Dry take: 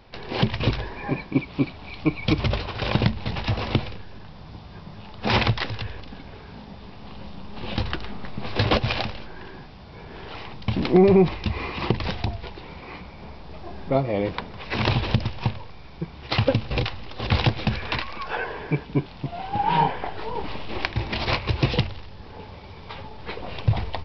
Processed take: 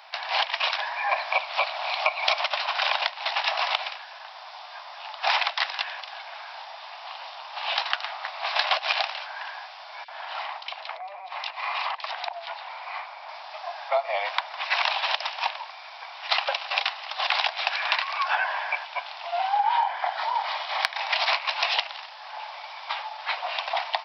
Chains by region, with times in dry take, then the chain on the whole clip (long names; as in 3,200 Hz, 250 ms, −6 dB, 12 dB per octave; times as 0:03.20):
0:01.11–0:02.44: ceiling on every frequency bin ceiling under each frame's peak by 17 dB + parametric band 600 Hz +7 dB 0.97 octaves
0:10.04–0:13.29: multiband delay without the direct sound highs, lows 40 ms, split 2,500 Hz + downward compressor 16 to 1, threshold −28 dBFS + high-frequency loss of the air 110 metres
0:19.48–0:20.97: notch filter 2,700 Hz, Q 7.7 + hard clipping −9 dBFS
whole clip: Butterworth high-pass 640 Hz 72 dB per octave; downward compressor 6 to 1, threshold −29 dBFS; level +8.5 dB